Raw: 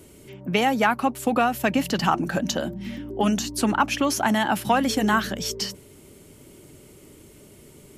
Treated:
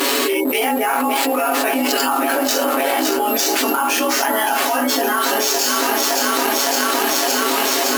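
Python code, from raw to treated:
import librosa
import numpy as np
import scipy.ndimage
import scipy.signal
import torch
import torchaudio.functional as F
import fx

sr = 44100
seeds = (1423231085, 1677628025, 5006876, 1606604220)

p1 = fx.frame_reverse(x, sr, frame_ms=46.0)
p2 = fx.rev_schroeder(p1, sr, rt60_s=0.36, comb_ms=28, drr_db=5.5)
p3 = fx.spec_gate(p2, sr, threshold_db=-30, keep='strong')
p4 = fx.high_shelf(p3, sr, hz=6000.0, db=11.0)
p5 = p4 + fx.echo_alternate(p4, sr, ms=281, hz=830.0, feedback_pct=80, wet_db=-9, dry=0)
p6 = fx.sample_hold(p5, sr, seeds[0], rate_hz=12000.0, jitter_pct=0)
p7 = p6 + 0.85 * np.pad(p6, (int(7.3 * sr / 1000.0), 0))[:len(p6)]
p8 = np.sign(p7) * np.maximum(np.abs(p7) - 10.0 ** (-34.0 / 20.0), 0.0)
p9 = p7 + (p8 * librosa.db_to_amplitude(1.5))
p10 = fx.brickwall_highpass(p9, sr, low_hz=250.0)
p11 = fx.peak_eq(p10, sr, hz=12000.0, db=12.0, octaves=0.22)
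p12 = fx.env_flatten(p11, sr, amount_pct=100)
y = p12 * librosa.db_to_amplitude(-9.0)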